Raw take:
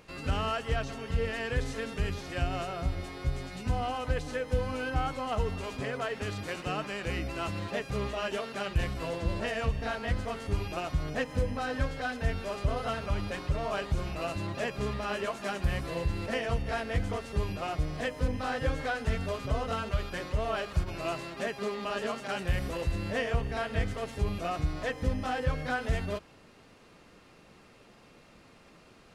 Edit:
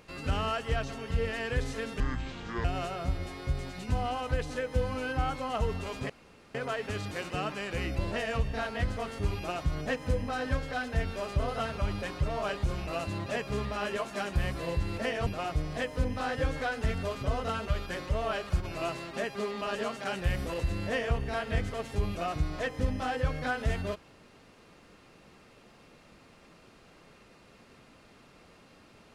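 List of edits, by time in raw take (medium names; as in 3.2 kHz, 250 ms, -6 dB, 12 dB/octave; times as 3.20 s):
2.00–2.42 s: speed 65%
5.87 s: insert room tone 0.45 s
7.31–9.27 s: delete
16.55–17.50 s: delete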